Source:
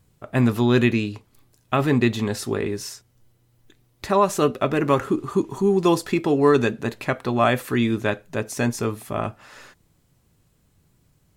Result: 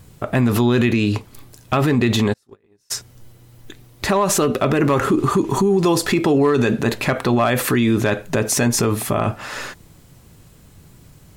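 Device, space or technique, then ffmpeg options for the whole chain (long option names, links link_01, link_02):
loud club master: -filter_complex "[0:a]acompressor=threshold=-20dB:ratio=2.5,asoftclip=type=hard:threshold=-14dB,alimiter=level_in=23.5dB:limit=-1dB:release=50:level=0:latency=1,asplit=3[link_01][link_02][link_03];[link_01]afade=type=out:start_time=2.32:duration=0.02[link_04];[link_02]agate=range=-46dB:threshold=-3dB:ratio=16:detection=peak,afade=type=in:start_time=2.32:duration=0.02,afade=type=out:start_time=2.9:duration=0.02[link_05];[link_03]afade=type=in:start_time=2.9:duration=0.02[link_06];[link_04][link_05][link_06]amix=inputs=3:normalize=0,volume=-8dB"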